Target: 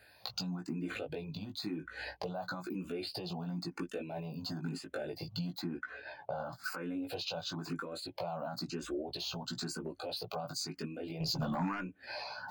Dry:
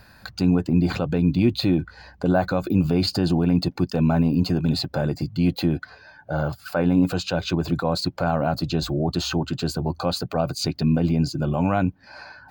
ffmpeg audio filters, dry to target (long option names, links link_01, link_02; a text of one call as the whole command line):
ffmpeg -i in.wav -filter_complex "[0:a]highpass=frequency=430:poles=1,agate=range=-14dB:threshold=-48dB:ratio=16:detection=peak,asettb=1/sr,asplit=3[link_01][link_02][link_03];[link_01]atrim=end=5.604[link_04];[link_02]atrim=start=5.6:end=6.64,asetpts=PTS-STARTPTS,afade=type=in:duration=0.004:curve=qsin,afade=type=out:start_time=1.036:duration=0.004:curve=qsin,highshelf=frequency=4100:gain=-12[link_05];[link_03]atrim=start=6.636[link_06];[link_04][link_05]acrossfade=duration=0.004:curve1=hsin:curve2=qsin[link_07];[link_07][link_06]acrossfade=duration=0.004:curve1=qsin:curve2=hsin,asettb=1/sr,asplit=3[link_08][link_09][link_10];[link_08]atrim=end=9.164[link_11];[link_09]atrim=start=9.16:end=9.61,asetpts=PTS-STARTPTS,afade=type=in:duration=0.004:curve=qsin,afade=type=out:start_time=0.446:duration=0.004:curve=qsin,acrossover=split=750|3600[link_12][link_13][link_14];[link_12]acompressor=threshold=-37dB:ratio=4[link_15];[link_13]acompressor=threshold=-47dB:ratio=4[link_16];[link_14]acompressor=threshold=-38dB:ratio=4[link_17];[link_15][link_16][link_17]amix=inputs=3:normalize=0[link_18];[link_10]atrim=start=9.606[link_19];[link_11][link_18]acrossfade=duration=0.004:curve1=hsin:curve2=qsin[link_20];[link_20][link_19]acrossfade=duration=0.004:curve1=qsin:curve2=hsin,alimiter=limit=-22.5dB:level=0:latency=1:release=167,acompressor=threshold=-43dB:ratio=12,flanger=delay=16.5:depth=2.6:speed=0.33,asettb=1/sr,asplit=3[link_21][link_22][link_23];[link_21]atrim=end=11.204[link_24];[link_22]atrim=start=11.2:end=11.81,asetpts=PTS-STARTPTS,afade=type=in:duration=0.004:curve=qsin,afade=type=out:start_time=0.606:duration=0.004:curve=qsin,aeval=exprs='0.0112*sin(PI/2*1.58*val(0)/0.0112)':channel_layout=same[link_25];[link_23]atrim=start=11.806[link_26];[link_24][link_25]acrossfade=duration=0.004:curve1=hsin:curve2=qsin[link_27];[link_27][link_26]acrossfade=duration=0.004:curve1=qsin:curve2=hsin,asplit=2[link_28][link_29];[link_29]afreqshift=1[link_30];[link_28][link_30]amix=inputs=2:normalize=1,volume=12.5dB" out.wav